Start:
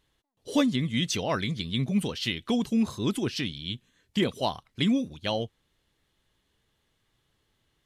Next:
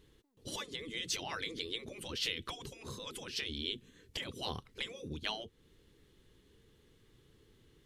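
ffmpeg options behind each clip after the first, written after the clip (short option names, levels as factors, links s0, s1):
-af "lowshelf=f=540:t=q:w=3:g=6,acompressor=threshold=0.0251:ratio=2.5,afftfilt=real='re*lt(hypot(re,im),0.0631)':imag='im*lt(hypot(re,im),0.0631)':win_size=1024:overlap=0.75,volume=1.41"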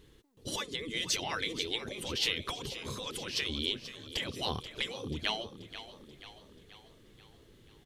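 -filter_complex "[0:a]asplit=7[s0][s1][s2][s3][s4][s5][s6];[s1]adelay=484,afreqshift=33,volume=0.224[s7];[s2]adelay=968,afreqshift=66,volume=0.12[s8];[s3]adelay=1452,afreqshift=99,volume=0.0653[s9];[s4]adelay=1936,afreqshift=132,volume=0.0351[s10];[s5]adelay=2420,afreqshift=165,volume=0.0191[s11];[s6]adelay=2904,afreqshift=198,volume=0.0102[s12];[s0][s7][s8][s9][s10][s11][s12]amix=inputs=7:normalize=0,volume=1.78"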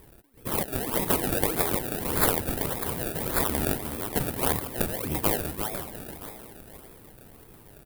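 -filter_complex "[0:a]asplit=2[s0][s1];[s1]adelay=341,lowpass=f=2300:p=1,volume=0.531,asplit=2[s2][s3];[s3]adelay=341,lowpass=f=2300:p=1,volume=0.44,asplit=2[s4][s5];[s5]adelay=341,lowpass=f=2300:p=1,volume=0.44,asplit=2[s6][s7];[s7]adelay=341,lowpass=f=2300:p=1,volume=0.44,asplit=2[s8][s9];[s9]adelay=341,lowpass=f=2300:p=1,volume=0.44[s10];[s0][s2][s4][s6][s8][s10]amix=inputs=6:normalize=0,acrusher=samples=29:mix=1:aa=0.000001:lfo=1:lforange=29:lforate=1.7,aexciter=amount=6.4:drive=2.5:freq=8800,volume=2"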